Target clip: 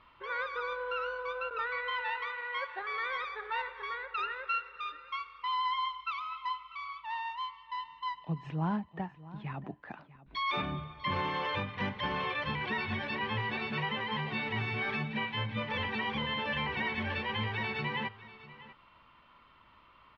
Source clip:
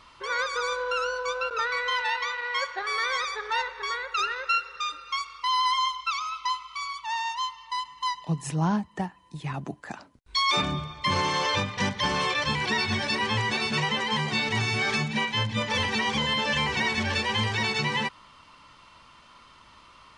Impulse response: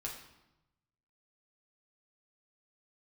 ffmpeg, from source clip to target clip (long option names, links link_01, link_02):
-filter_complex "[0:a]lowpass=frequency=3100:width=0.5412,lowpass=frequency=3100:width=1.3066,asplit=2[link_01][link_02];[link_02]aecho=0:1:645:0.133[link_03];[link_01][link_03]amix=inputs=2:normalize=0,volume=-7dB"